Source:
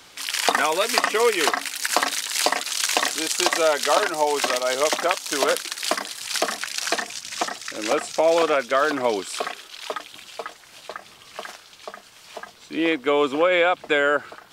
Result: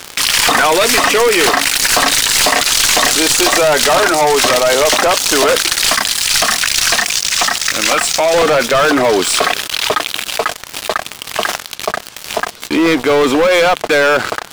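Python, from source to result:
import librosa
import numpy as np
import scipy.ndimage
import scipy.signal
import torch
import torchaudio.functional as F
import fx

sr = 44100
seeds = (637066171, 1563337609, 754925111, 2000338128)

y = fx.tracing_dist(x, sr, depth_ms=0.052)
y = fx.peak_eq(y, sr, hz=400.0, db=-14.5, octaves=1.7, at=(5.9, 8.34))
y = fx.leveller(y, sr, passes=5)
y = fx.env_flatten(y, sr, amount_pct=50)
y = y * librosa.db_to_amplitude(-4.5)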